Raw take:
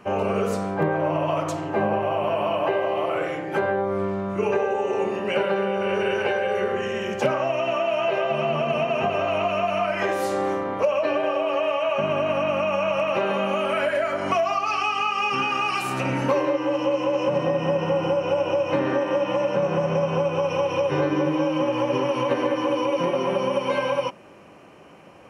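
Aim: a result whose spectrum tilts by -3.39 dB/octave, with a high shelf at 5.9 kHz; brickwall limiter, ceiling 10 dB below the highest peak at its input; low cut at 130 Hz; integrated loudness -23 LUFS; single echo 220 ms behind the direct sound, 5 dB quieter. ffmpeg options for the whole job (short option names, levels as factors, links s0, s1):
-af "highpass=130,highshelf=f=5900:g=7.5,alimiter=limit=0.106:level=0:latency=1,aecho=1:1:220:0.562,volume=1.5"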